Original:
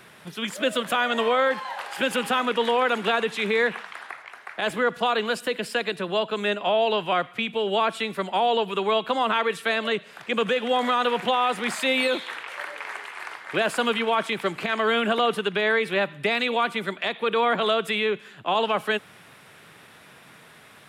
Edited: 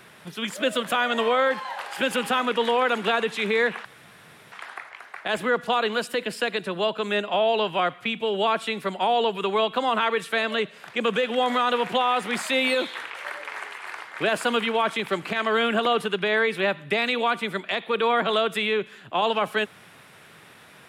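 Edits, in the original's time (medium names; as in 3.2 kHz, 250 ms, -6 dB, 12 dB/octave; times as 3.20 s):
3.85 s: insert room tone 0.67 s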